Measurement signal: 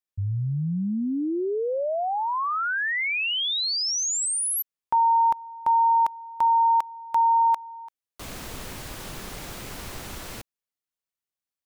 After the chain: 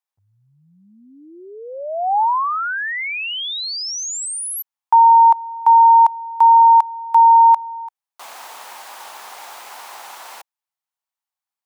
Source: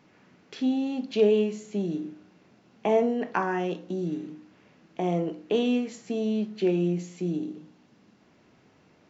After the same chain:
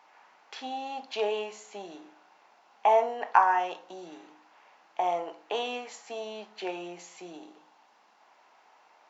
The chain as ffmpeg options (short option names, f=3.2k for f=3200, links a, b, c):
-af "highpass=f=850:t=q:w=3.4"